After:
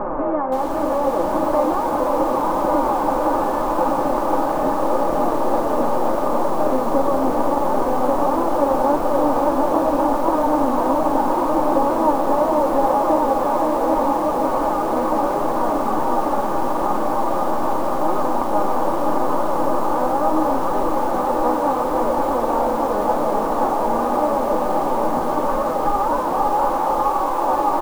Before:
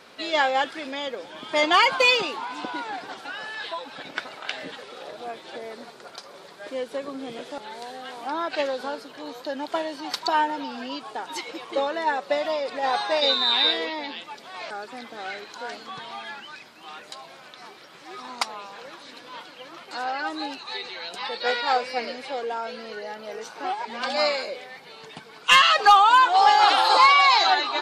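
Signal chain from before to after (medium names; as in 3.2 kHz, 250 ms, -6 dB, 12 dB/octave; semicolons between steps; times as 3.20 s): spectral levelling over time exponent 0.4; in parallel at -11 dB: bit crusher 5-bit; on the sum: compression 12:1, threshold -13 dBFS, peak gain reduction 9.5 dB; low-pass 1.1 kHz 24 dB/octave; tilt EQ -3.5 dB/octave; flange 0.77 Hz, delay 4.7 ms, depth 8.2 ms, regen +17%; bass shelf 150 Hz +6.5 dB; comb 3.4 ms, depth 38%; on a send: delay 1141 ms -5 dB; on the sum: bit-crushed delay 521 ms, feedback 55%, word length 6-bit, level -5 dB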